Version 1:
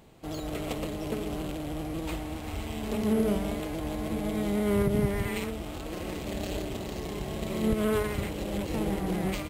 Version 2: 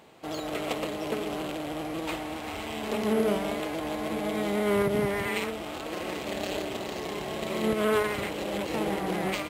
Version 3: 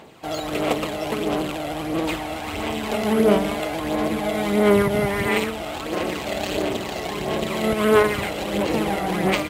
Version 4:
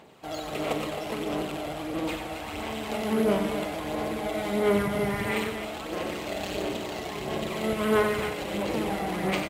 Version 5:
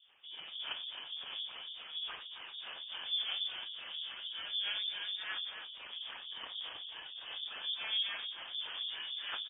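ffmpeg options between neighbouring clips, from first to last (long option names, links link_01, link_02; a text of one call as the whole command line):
ffmpeg -i in.wav -af "highpass=frequency=620:poles=1,highshelf=frequency=5000:gain=-8.5,volume=7.5dB" out.wav
ffmpeg -i in.wav -af "aphaser=in_gain=1:out_gain=1:delay=1.5:decay=0.4:speed=1.5:type=sinusoidal,volume=6dB" out.wav
ffmpeg -i in.wav -af "aecho=1:1:40.82|93.29|265.3:0.251|0.398|0.316,volume=-7.5dB" out.wav
ffmpeg -i in.wav -filter_complex "[0:a]acrossover=split=560[link_01][link_02];[link_01]aeval=exprs='val(0)*(1-1/2+1/2*cos(2*PI*3.5*n/s))':channel_layout=same[link_03];[link_02]aeval=exprs='val(0)*(1-1/2-1/2*cos(2*PI*3.5*n/s))':channel_layout=same[link_04];[link_03][link_04]amix=inputs=2:normalize=0,lowpass=frequency=3100:width_type=q:width=0.5098,lowpass=frequency=3100:width_type=q:width=0.6013,lowpass=frequency=3100:width_type=q:width=0.9,lowpass=frequency=3100:width_type=q:width=2.563,afreqshift=-3700,volume=-7.5dB" out.wav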